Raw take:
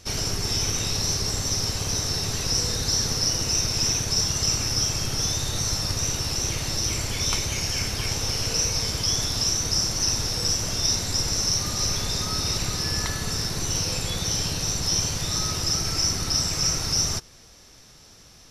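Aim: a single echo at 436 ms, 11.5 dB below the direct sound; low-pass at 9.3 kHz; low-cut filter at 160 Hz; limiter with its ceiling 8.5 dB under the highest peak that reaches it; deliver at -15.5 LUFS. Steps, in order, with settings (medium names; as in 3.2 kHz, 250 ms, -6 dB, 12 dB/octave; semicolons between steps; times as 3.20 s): high-pass 160 Hz; low-pass 9.3 kHz; peak limiter -18 dBFS; delay 436 ms -11.5 dB; trim +10 dB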